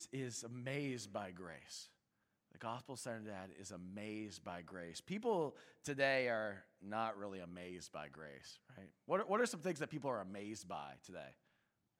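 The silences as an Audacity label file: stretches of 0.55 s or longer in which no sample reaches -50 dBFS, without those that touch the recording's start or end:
1.840000	2.550000	silence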